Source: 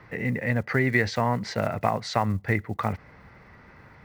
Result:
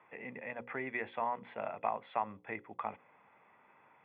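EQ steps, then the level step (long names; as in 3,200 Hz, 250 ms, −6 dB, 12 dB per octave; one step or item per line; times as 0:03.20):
high-pass filter 260 Hz 12 dB per octave
Chebyshev low-pass with heavy ripple 3,500 Hz, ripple 9 dB
mains-hum notches 60/120/180/240/300/360/420/480/540 Hz
−6.5 dB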